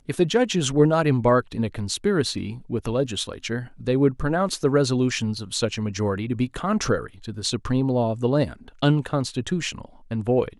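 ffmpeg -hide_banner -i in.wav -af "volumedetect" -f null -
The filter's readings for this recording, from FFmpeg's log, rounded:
mean_volume: -23.2 dB
max_volume: -5.6 dB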